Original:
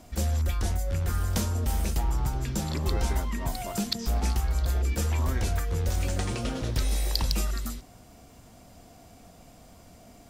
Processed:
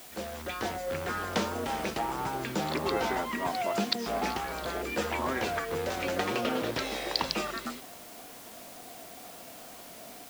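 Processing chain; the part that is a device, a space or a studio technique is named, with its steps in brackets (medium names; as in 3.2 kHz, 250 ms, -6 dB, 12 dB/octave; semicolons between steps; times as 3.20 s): dictaphone (band-pass 330–3300 Hz; level rider gain up to 6.5 dB; wow and flutter; white noise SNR 16 dB)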